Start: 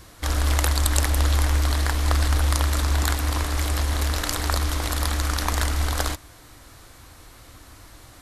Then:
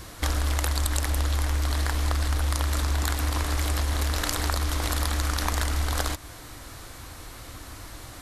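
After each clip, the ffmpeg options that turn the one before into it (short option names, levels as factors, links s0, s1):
-af "acompressor=threshold=0.0398:ratio=5,volume=1.78"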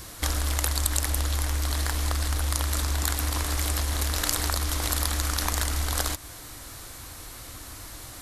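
-af "highshelf=f=4900:g=8.5,volume=0.794"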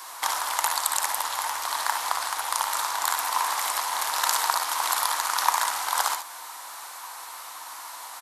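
-af "highpass=f=930:t=q:w=4.9,aecho=1:1:59|71:0.398|0.355"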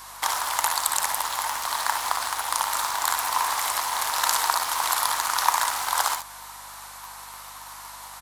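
-filter_complex "[0:a]asplit=2[s0][s1];[s1]acrusher=bits=4:mix=0:aa=0.000001,volume=0.355[s2];[s0][s2]amix=inputs=2:normalize=0,aeval=exprs='val(0)+0.00158*(sin(2*PI*50*n/s)+sin(2*PI*2*50*n/s)/2+sin(2*PI*3*50*n/s)/3+sin(2*PI*4*50*n/s)/4+sin(2*PI*5*50*n/s)/5)':c=same,volume=0.841"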